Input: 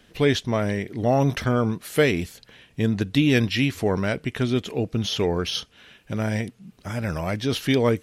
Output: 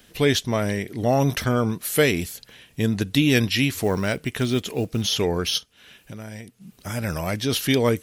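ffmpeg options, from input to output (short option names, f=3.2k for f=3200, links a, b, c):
-filter_complex "[0:a]aemphasis=mode=production:type=50kf,asettb=1/sr,asplit=3[a][b][c];[a]atrim=end=3.744[d];[b]atrim=start=3.74:end=5.02,asetpts=PTS-STARTPTS,afade=t=in:d=0.004:c=qsin,afade=t=out:st=1.276:d=0.004:c=qsin,acrusher=bits=7:mode=log:mix=0:aa=0.000001[e];[c]atrim=start=5.016[f];[d][e]acrossfade=d=0.004:c1=hsin:c2=qsin[g];[g][f]acrossfade=d=0.004:c1=qsin:c2=hsin,asplit=3[h][i][j];[h]afade=t=out:st=5.57:d=0.02[k];[i]acompressor=threshold=-40dB:ratio=2.5,afade=t=in:st=5.57:d=0.02,afade=t=out:st=6.6:d=0.02[l];[j]afade=t=in:st=6.6:d=0.02[m];[k][l][m]amix=inputs=3:normalize=0"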